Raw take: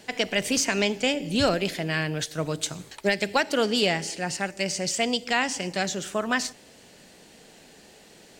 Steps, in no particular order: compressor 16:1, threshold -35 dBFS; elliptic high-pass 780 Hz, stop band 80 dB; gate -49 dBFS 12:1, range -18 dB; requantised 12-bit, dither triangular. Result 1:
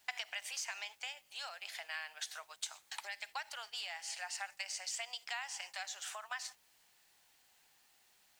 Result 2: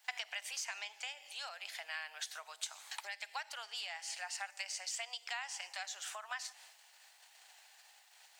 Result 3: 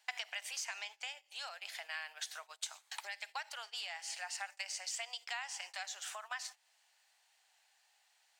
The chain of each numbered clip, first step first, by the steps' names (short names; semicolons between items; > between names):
compressor > elliptic high-pass > gate > requantised; gate > requantised > compressor > elliptic high-pass; requantised > compressor > elliptic high-pass > gate